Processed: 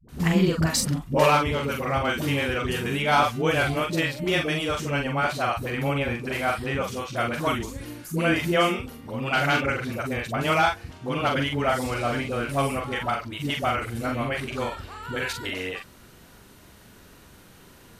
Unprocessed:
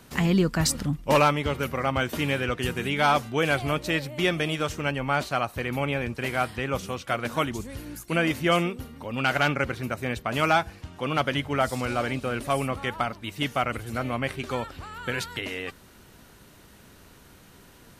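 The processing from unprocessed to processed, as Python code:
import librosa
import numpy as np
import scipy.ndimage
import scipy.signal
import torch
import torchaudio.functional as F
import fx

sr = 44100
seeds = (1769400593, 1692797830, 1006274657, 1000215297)

y = fx.doubler(x, sr, ms=43.0, db=-4.0)
y = fx.dispersion(y, sr, late='highs', ms=88.0, hz=380.0)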